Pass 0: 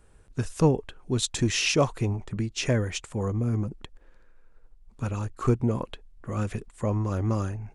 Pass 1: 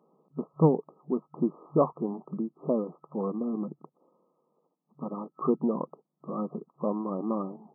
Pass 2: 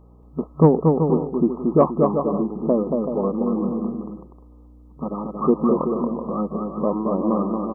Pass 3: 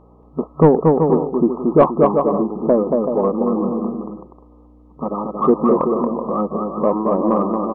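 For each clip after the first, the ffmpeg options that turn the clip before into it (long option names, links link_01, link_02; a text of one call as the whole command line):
ffmpeg -i in.wav -af "afftfilt=real='re*between(b*sr/4096,140,1300)':imag='im*between(b*sr/4096,140,1300)':win_size=4096:overlap=0.75" out.wav
ffmpeg -i in.wav -af "aeval=exprs='val(0)+0.00158*(sin(2*PI*60*n/s)+sin(2*PI*2*60*n/s)/2+sin(2*PI*3*60*n/s)/3+sin(2*PI*4*60*n/s)/4+sin(2*PI*5*60*n/s)/5)':channel_layout=same,aecho=1:1:230|379.5|476.7|539.8|580.9:0.631|0.398|0.251|0.158|0.1,acontrast=30,volume=2.5dB" out.wav
ffmpeg -i in.wav -filter_complex "[0:a]asplit=2[link_01][link_02];[link_02]highpass=frequency=720:poles=1,volume=13dB,asoftclip=type=tanh:threshold=-2dB[link_03];[link_01][link_03]amix=inputs=2:normalize=0,lowpass=frequency=1100:poles=1,volume=-6dB,volume=3dB" out.wav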